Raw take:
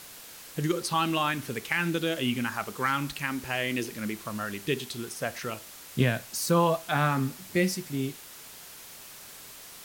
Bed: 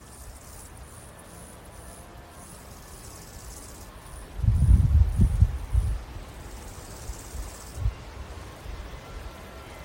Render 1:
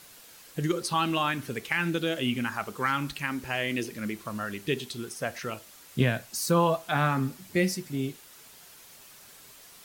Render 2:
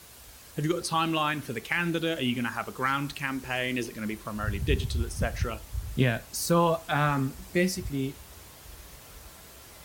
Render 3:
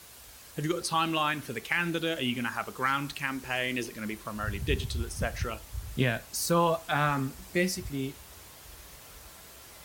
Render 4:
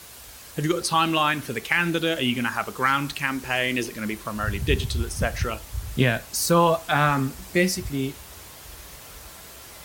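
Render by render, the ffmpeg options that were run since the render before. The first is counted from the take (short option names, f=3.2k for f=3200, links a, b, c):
-af "afftdn=nr=6:nf=-47"
-filter_complex "[1:a]volume=-10.5dB[a];[0:a][a]amix=inputs=2:normalize=0"
-af "lowshelf=f=450:g=-4"
-af "volume=6.5dB"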